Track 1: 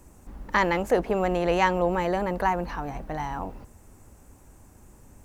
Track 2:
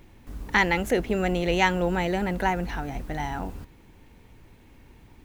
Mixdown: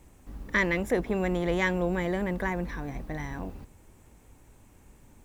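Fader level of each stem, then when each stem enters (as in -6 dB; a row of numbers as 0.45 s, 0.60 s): -5.5 dB, -8.0 dB; 0.00 s, 0.00 s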